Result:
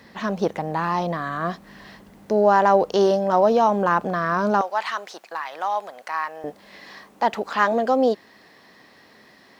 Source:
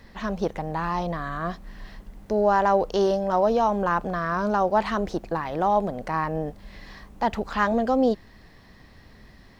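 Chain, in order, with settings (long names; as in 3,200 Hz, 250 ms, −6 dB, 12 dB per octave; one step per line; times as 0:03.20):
high-pass filter 150 Hz 12 dB per octave, from 0:04.61 1,100 Hz, from 0:06.44 310 Hz
level +4 dB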